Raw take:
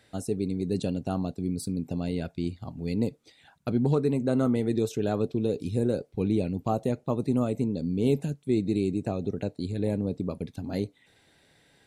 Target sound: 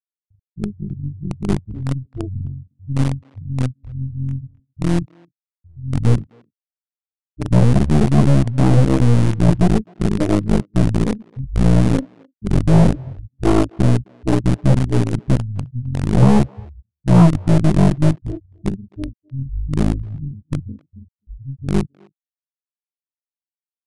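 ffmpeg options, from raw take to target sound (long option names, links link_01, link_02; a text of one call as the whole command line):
ffmpeg -i in.wav -filter_complex "[0:a]highpass=51,afftfilt=real='re*gte(hypot(re,im),0.224)':imag='im*gte(hypot(re,im),0.224)':win_size=1024:overlap=0.75,aecho=1:1:3.1:0.96,dynaudnorm=framelen=500:gausssize=3:maxgain=6.5dB,flanger=delay=17.5:depth=4.4:speed=1.2,asplit=2[link_01][link_02];[link_02]aeval=exprs='val(0)*gte(abs(val(0)),0.0794)':channel_layout=same,volume=-4.5dB[link_03];[link_01][link_03]amix=inputs=2:normalize=0,aeval=exprs='0.75*(cos(1*acos(clip(val(0)/0.75,-1,1)))-cos(1*PI/2))+0.133*(cos(8*acos(clip(val(0)/0.75,-1,1)))-cos(8*PI/2))':channel_layout=same,asetrate=21918,aresample=44100,aeval=exprs='1.12*(cos(1*acos(clip(val(0)/1.12,-1,1)))-cos(1*PI/2))+0.178*(cos(5*acos(clip(val(0)/1.12,-1,1)))-cos(5*PI/2))+0.0398*(cos(6*acos(clip(val(0)/1.12,-1,1)))-cos(6*PI/2))':channel_layout=same,asplit=2[link_04][link_05];[link_05]adelay=260,highpass=300,lowpass=3400,asoftclip=type=hard:threshold=-7dB,volume=-25dB[link_06];[link_04][link_06]amix=inputs=2:normalize=0" out.wav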